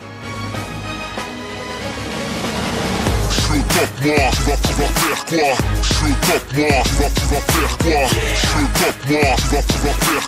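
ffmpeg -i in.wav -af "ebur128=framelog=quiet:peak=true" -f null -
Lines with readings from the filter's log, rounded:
Integrated loudness:
  I:         -17.2 LUFS
  Threshold: -27.3 LUFS
Loudness range:
  LRA:         4.9 LU
  Threshold: -36.9 LUFS
  LRA low:   -20.8 LUFS
  LRA high:  -15.9 LUFS
True peak:
  Peak:       -1.7 dBFS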